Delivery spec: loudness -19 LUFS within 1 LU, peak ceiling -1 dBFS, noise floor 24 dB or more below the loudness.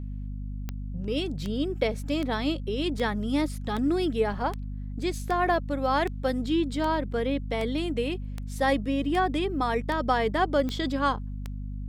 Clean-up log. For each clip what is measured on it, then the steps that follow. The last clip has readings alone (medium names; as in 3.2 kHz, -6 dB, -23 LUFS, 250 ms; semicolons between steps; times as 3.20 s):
clicks found 15; hum 50 Hz; highest harmonic 250 Hz; hum level -32 dBFS; loudness -28.0 LUFS; peak level -11.5 dBFS; loudness target -19.0 LUFS
-> de-click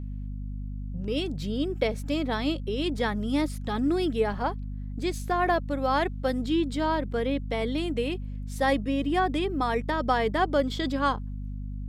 clicks found 0; hum 50 Hz; highest harmonic 250 Hz; hum level -32 dBFS
-> de-hum 50 Hz, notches 5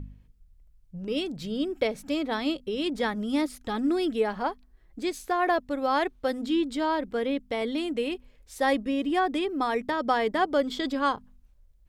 hum not found; loudness -28.0 LUFS; peak level -11.5 dBFS; loudness target -19.0 LUFS
-> trim +9 dB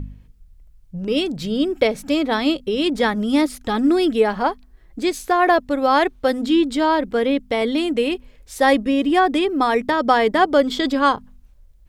loudness -19.0 LUFS; peak level -2.5 dBFS; noise floor -50 dBFS